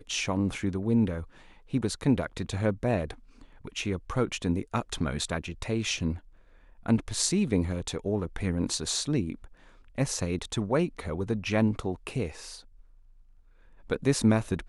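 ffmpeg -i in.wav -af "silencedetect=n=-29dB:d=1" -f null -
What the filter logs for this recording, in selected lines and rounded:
silence_start: 12.28
silence_end: 13.90 | silence_duration: 1.62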